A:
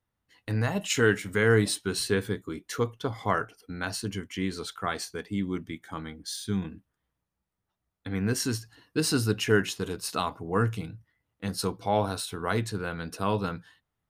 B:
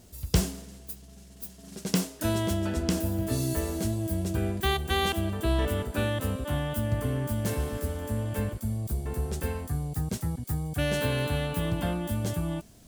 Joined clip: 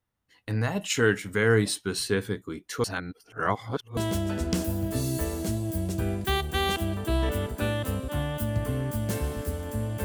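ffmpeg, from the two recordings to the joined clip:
-filter_complex "[0:a]apad=whole_dur=10.04,atrim=end=10.04,asplit=2[a][b];[a]atrim=end=2.842[c];[b]atrim=start=2.838:end=3.972,asetpts=PTS-STARTPTS,areverse[d];[1:a]atrim=start=2.328:end=8.4[e];[c][d]acrossfade=d=0.004:c1=hsin:c2=hsin[f];[f][e]acrossfade=d=0.004:c1=hsin:c2=hsin"

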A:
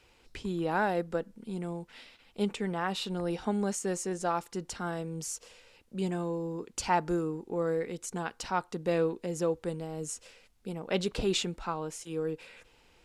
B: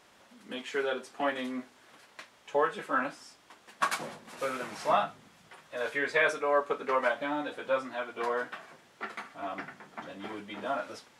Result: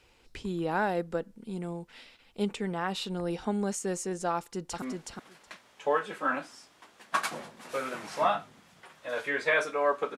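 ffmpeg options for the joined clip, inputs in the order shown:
-filter_complex "[0:a]apad=whole_dur=10.17,atrim=end=10.17,atrim=end=4.822[a];[1:a]atrim=start=1.498:end=6.85[b];[a][b]acrossfade=d=0.004:c1=hsin:c2=hsin,asplit=2[c][d];[d]afade=t=in:st=4.36:d=0.01,afade=t=out:st=4.82:d=0.01,aecho=0:1:370|740:0.707946|0.0707946[e];[c][e]amix=inputs=2:normalize=0"

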